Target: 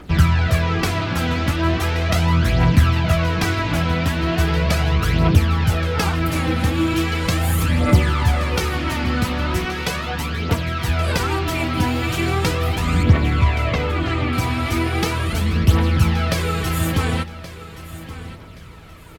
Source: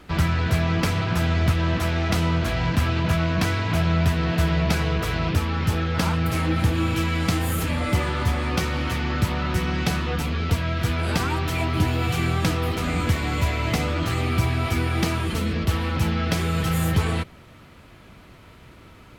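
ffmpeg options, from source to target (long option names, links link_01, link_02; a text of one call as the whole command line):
ffmpeg -i in.wav -filter_complex "[0:a]asettb=1/sr,asplit=3[link_01][link_02][link_03];[link_01]atrim=end=9.654[link_04];[link_02]atrim=start=9.65:end=10.88,asetpts=PTS-STARTPTS,afade=type=in:duration=0.004:curve=qsin,afade=type=out:start_time=1.226:duration=0.004:curve=qsin,lowshelf=frequency=160:gain=-10.5[link_05];[link_03]atrim=start=10.876[link_06];[link_04][link_05]acrossfade=duration=0.004:curve1=hsin:curve2=qsin[link_07];[link_07][link_06]acrossfade=duration=0.004:curve1=qsin:curve2=hsin,asettb=1/sr,asplit=3[link_08][link_09][link_10];[link_08]atrim=end=13.034[link_11];[link_09]atrim=start=13.03:end=14.33,asetpts=PTS-STARTPTS,afade=type=in:duration=0.004:curve=qsin,afade=type=out:start_time=1.296:duration=0.004:curve=qsin,lowpass=3500[link_12];[link_10]atrim=start=14.326[link_13];[link_11][link_12]acrossfade=duration=0.004:curve1=hsin:curve2=qsin[link_14];[link_14][link_13]acrossfade=duration=0.004:curve1=qsin:curve2=hsin,aphaser=in_gain=1:out_gain=1:delay=4.1:decay=0.53:speed=0.38:type=triangular,aecho=1:1:1124|2248|3372:0.178|0.0516|0.015,volume=2.5dB" out.wav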